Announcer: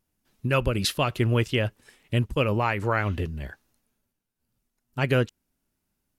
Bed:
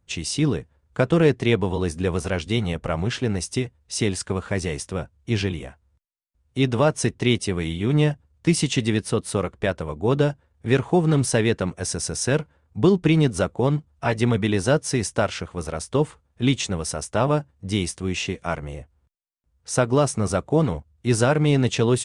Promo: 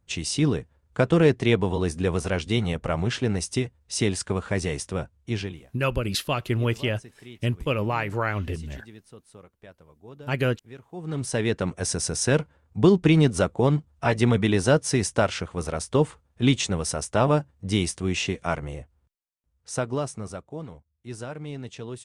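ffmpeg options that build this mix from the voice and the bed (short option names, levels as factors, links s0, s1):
-filter_complex "[0:a]adelay=5300,volume=0.841[s0];[1:a]volume=15,afade=t=out:st=5.08:d=0.64:silence=0.0668344,afade=t=in:st=10.92:d=0.91:silence=0.0595662,afade=t=out:st=18.45:d=2.06:silence=0.141254[s1];[s0][s1]amix=inputs=2:normalize=0"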